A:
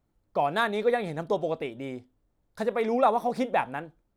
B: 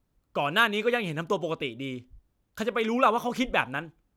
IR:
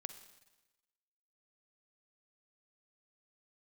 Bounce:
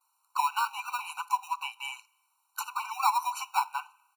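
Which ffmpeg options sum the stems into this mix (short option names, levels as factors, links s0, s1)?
-filter_complex "[0:a]highpass=780,acrusher=samples=14:mix=1:aa=0.000001,volume=0.631,asplit=2[s0][s1];[1:a]equalizer=f=10000:w=0.46:g=15,acompressor=threshold=0.0282:ratio=2.5,adelay=9.1,volume=1.33,asplit=2[s2][s3];[s3]volume=0.188[s4];[s1]apad=whole_len=184115[s5];[s2][s5]sidechaincompress=threshold=0.00794:ratio=8:attack=16:release=173[s6];[2:a]atrim=start_sample=2205[s7];[s4][s7]afir=irnorm=-1:irlink=0[s8];[s0][s6][s8]amix=inputs=3:normalize=0,equalizer=f=1000:t=o:w=0.32:g=14,afftfilt=real='re*eq(mod(floor(b*sr/1024/760),2),1)':imag='im*eq(mod(floor(b*sr/1024/760),2),1)':win_size=1024:overlap=0.75"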